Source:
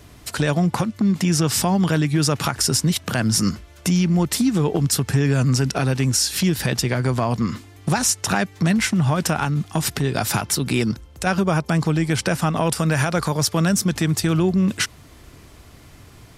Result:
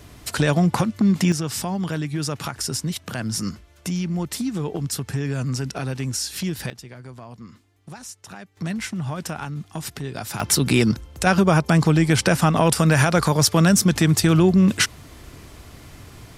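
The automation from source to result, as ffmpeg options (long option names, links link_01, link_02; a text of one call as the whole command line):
ffmpeg -i in.wav -af "asetnsamples=nb_out_samples=441:pad=0,asendcmd='1.32 volume volume -7dB;6.7 volume volume -19dB;8.57 volume volume -9dB;10.4 volume volume 3dB',volume=1dB" out.wav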